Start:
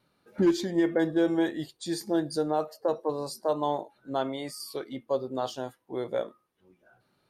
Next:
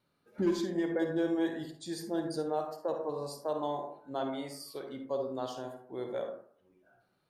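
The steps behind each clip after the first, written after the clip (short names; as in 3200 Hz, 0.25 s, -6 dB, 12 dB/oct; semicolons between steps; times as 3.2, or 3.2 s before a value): reverb RT60 0.55 s, pre-delay 42 ms, DRR 4 dB; gain -7 dB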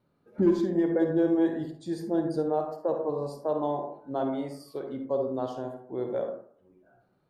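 tilt shelf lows +7.5 dB, about 1500 Hz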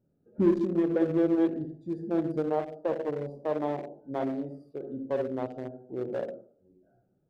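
Wiener smoothing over 41 samples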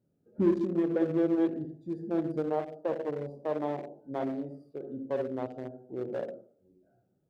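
HPF 47 Hz; gain -2 dB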